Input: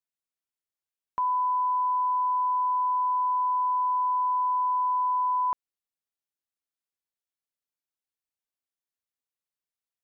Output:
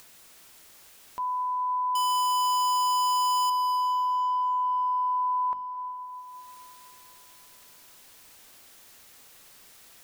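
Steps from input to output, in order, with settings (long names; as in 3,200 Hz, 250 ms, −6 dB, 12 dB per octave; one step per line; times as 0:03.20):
0:01.95–0:03.50: each half-wave held at its own peak
mains-hum notches 50/100/150/200/250/300 Hz
upward compression, threshold −28 dBFS
brickwall limiter −29 dBFS, peak gain reduction 13 dB
on a send: convolution reverb RT60 3.3 s, pre-delay 165 ms, DRR 10 dB
on the sum: level +3 dB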